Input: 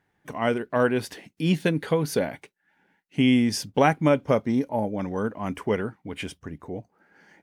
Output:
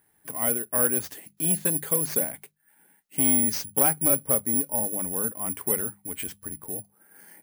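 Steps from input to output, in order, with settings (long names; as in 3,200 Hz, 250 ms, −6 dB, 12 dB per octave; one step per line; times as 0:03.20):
bad sample-rate conversion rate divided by 4×, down none, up zero stuff
mains-hum notches 50/100/150/200 Hz
in parallel at +1.5 dB: downward compressor, threshold −42 dBFS, peak gain reduction 32 dB
on the sum: saturating transformer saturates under 2,300 Hz
level −7 dB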